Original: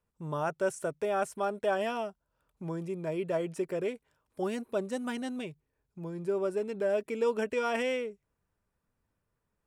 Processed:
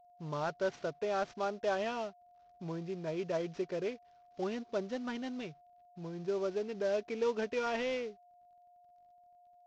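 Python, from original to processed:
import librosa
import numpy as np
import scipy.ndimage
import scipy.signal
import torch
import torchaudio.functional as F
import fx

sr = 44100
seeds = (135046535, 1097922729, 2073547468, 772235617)

y = fx.cvsd(x, sr, bps=32000)
y = y + 10.0 ** (-56.0 / 20.0) * np.sin(2.0 * np.pi * 710.0 * np.arange(len(y)) / sr)
y = y * 10.0 ** (-3.5 / 20.0)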